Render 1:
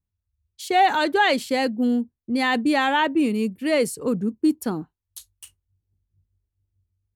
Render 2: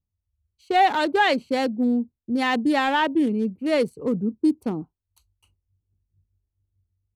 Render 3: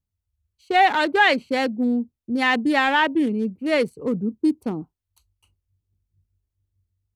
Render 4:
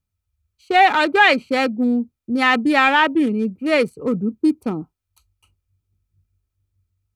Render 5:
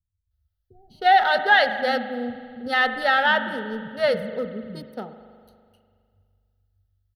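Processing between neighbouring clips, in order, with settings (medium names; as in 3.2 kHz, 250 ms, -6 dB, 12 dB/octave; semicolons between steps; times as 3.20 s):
local Wiener filter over 25 samples
dynamic bell 2 kHz, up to +6 dB, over -36 dBFS, Q 1
small resonant body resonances 1.3/2.4 kHz, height 11 dB; trim +3 dB
static phaser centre 1.6 kHz, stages 8; bands offset in time lows, highs 310 ms, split 210 Hz; spring tank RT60 2.1 s, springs 41 ms, chirp 70 ms, DRR 9.5 dB; trim -1.5 dB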